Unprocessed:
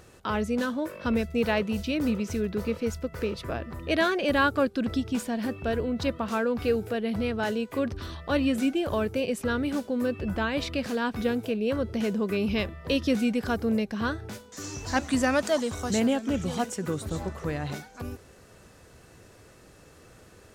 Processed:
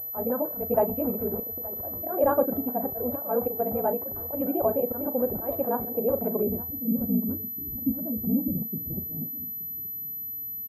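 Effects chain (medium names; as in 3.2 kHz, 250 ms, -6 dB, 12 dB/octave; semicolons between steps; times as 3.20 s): dynamic bell 790 Hz, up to +6 dB, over -38 dBFS, Q 0.73; slow attack 245 ms; low-pass sweep 730 Hz -> 230 Hz, 12.18–12.72 s; granular stretch 0.52×, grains 34 ms; doubling 37 ms -12 dB; on a send: delay 873 ms -19.5 dB; on the sum: class-D stage that switches slowly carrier 12 kHz; trim -3.5 dB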